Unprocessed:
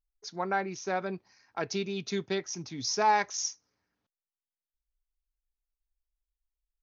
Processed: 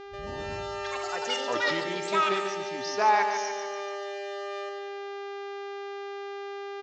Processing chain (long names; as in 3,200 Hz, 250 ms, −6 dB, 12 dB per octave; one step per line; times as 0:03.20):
turntable start at the beginning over 2.10 s
high-pass filter 100 Hz 12 dB per octave
parametric band 140 Hz −13.5 dB 2.4 octaves
hum with harmonics 400 Hz, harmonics 18, −47 dBFS −6 dB per octave
high-frequency loss of the air 200 metres
repeating echo 145 ms, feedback 56%, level −7 dB
delay with pitch and tempo change per echo 135 ms, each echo +7 semitones, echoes 3
downsampling to 16,000 Hz
level +4.5 dB